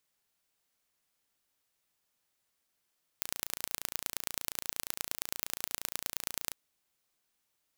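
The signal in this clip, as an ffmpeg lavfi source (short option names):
-f lavfi -i "aevalsrc='0.596*eq(mod(n,1547),0)*(0.5+0.5*eq(mod(n,4641),0))':d=3.32:s=44100"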